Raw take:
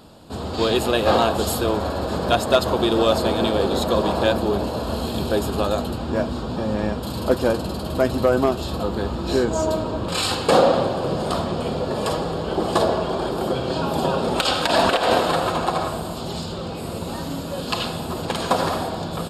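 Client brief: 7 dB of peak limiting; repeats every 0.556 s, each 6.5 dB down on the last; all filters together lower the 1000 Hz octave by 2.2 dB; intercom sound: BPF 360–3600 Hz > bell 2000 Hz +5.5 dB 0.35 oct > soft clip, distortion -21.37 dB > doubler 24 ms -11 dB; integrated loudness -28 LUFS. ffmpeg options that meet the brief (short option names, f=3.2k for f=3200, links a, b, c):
-filter_complex "[0:a]equalizer=f=1k:t=o:g=-3,alimiter=limit=-13.5dB:level=0:latency=1,highpass=360,lowpass=3.6k,equalizer=f=2k:t=o:w=0.35:g=5.5,aecho=1:1:556|1112|1668|2224|2780|3336:0.473|0.222|0.105|0.0491|0.0231|0.0109,asoftclip=threshold=-15.5dB,asplit=2[a][b];[b]adelay=24,volume=-11dB[c];[a][c]amix=inputs=2:normalize=0,volume=-1.5dB"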